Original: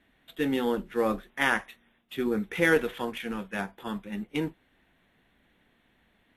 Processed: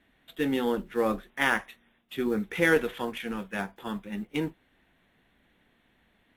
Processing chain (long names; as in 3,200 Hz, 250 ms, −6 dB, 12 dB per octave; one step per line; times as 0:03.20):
one scale factor per block 7 bits